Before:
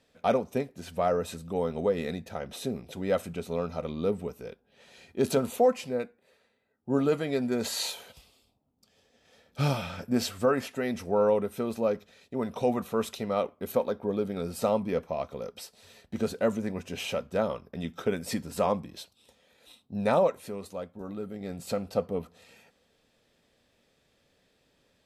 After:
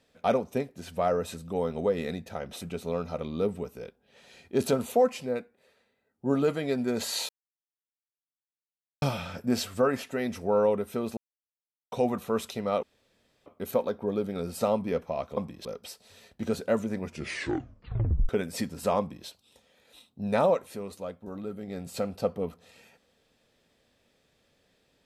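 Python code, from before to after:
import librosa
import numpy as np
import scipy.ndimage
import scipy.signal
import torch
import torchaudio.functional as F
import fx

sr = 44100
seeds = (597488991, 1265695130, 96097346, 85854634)

y = fx.edit(x, sr, fx.cut(start_s=2.61, length_s=0.64),
    fx.silence(start_s=7.93, length_s=1.73),
    fx.silence(start_s=11.81, length_s=0.75),
    fx.insert_room_tone(at_s=13.47, length_s=0.63),
    fx.tape_stop(start_s=16.77, length_s=1.25),
    fx.duplicate(start_s=18.72, length_s=0.28, to_s=15.38), tone=tone)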